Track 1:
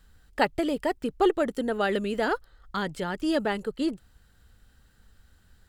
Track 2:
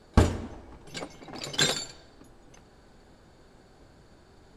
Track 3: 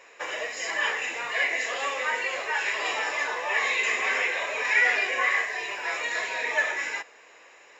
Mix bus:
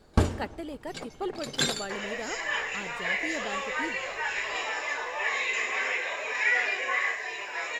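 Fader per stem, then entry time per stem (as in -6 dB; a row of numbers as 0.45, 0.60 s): -11.0, -2.5, -3.5 dB; 0.00, 0.00, 1.70 s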